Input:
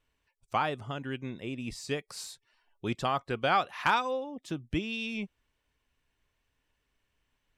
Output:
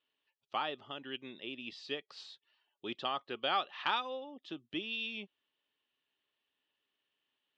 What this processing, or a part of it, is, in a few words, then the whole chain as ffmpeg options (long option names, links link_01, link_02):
phone earpiece: -filter_complex "[0:a]asettb=1/sr,asplit=3[link_01][link_02][link_03];[link_01]atrim=end=1.034[link_04];[link_02]atrim=start=1.03:end=1.89,asetpts=PTS-STARTPTS,afade=type=in:duration=0.004:curve=qsin,afade=type=out:start_time=0.856:duration=0.004:curve=qsin,equalizer=frequency=3400:width=1:gain=4[link_05];[link_03]atrim=start=1.886[link_06];[link_04][link_05]acrossfade=duration=0.004:curve1=hsin:curve2=qsin[link_07];[link_07][link_06]acrossfade=duration=0.004:curve1=qsin:curve2=hsin,highpass=440,equalizer=frequency=490:width_type=q:width=4:gain=-7,equalizer=frequency=700:width_type=q:width=4:gain=-7,equalizer=frequency=1000:width_type=q:width=4:gain=-8,equalizer=frequency=1500:width_type=q:width=4:gain=-8,equalizer=frequency=2200:width_type=q:width=4:gain=-9,equalizer=frequency=3200:width_type=q:width=4:gain=4,lowpass=frequency=3900:width=0.5412,lowpass=frequency=3900:width=1.3066"